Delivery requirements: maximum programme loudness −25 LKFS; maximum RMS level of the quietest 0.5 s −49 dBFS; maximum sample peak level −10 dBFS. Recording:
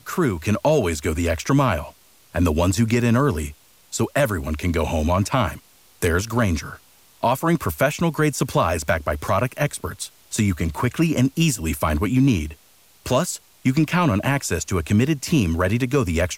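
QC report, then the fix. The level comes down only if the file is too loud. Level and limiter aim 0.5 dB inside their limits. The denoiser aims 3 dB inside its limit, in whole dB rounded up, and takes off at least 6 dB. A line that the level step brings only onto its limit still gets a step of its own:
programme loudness −21.5 LKFS: out of spec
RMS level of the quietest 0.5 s −54 dBFS: in spec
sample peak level −8.0 dBFS: out of spec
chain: level −4 dB

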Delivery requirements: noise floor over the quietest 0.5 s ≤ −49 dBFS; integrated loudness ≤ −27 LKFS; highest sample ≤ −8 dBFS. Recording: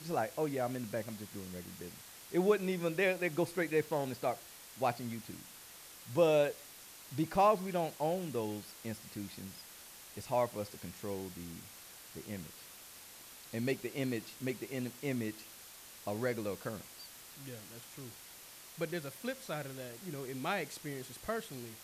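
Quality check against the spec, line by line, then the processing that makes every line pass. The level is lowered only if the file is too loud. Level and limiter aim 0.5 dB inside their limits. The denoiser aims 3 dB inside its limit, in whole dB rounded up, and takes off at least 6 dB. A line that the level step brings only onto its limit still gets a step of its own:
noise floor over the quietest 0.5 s −53 dBFS: in spec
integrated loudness −36.5 LKFS: in spec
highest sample −16.5 dBFS: in spec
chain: no processing needed

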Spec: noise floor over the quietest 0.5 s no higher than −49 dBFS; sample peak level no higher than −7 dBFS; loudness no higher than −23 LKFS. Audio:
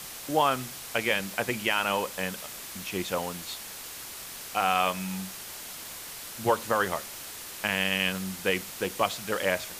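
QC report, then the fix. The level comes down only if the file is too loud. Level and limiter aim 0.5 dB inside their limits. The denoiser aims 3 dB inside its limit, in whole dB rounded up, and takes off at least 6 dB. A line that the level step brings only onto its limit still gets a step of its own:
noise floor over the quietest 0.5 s −41 dBFS: out of spec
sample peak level −11.5 dBFS: in spec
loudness −29.5 LKFS: in spec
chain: broadband denoise 11 dB, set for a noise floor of −41 dBFS

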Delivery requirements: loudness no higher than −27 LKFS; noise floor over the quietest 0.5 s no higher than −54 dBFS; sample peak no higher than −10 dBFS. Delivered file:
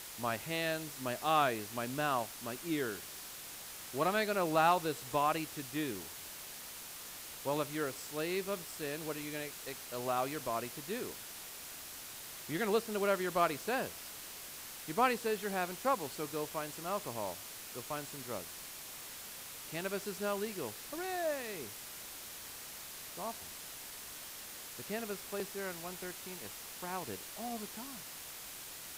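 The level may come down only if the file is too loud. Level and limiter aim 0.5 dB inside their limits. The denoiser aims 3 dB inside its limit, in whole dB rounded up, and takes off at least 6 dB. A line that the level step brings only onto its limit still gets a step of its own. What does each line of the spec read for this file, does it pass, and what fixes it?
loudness −37.5 LKFS: in spec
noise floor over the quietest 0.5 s −48 dBFS: out of spec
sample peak −17.0 dBFS: in spec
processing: broadband denoise 9 dB, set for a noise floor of −48 dBFS

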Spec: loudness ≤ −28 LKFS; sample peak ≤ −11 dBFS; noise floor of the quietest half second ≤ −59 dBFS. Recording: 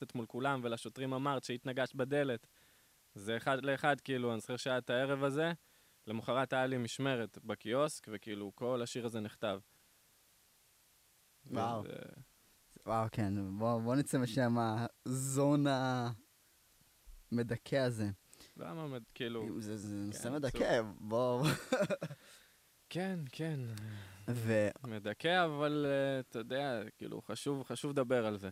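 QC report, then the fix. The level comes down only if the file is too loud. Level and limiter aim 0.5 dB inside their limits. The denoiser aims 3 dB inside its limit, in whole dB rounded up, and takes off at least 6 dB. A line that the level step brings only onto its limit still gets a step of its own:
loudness −37.0 LKFS: in spec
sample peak −17.0 dBFS: in spec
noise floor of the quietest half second −69 dBFS: in spec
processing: no processing needed

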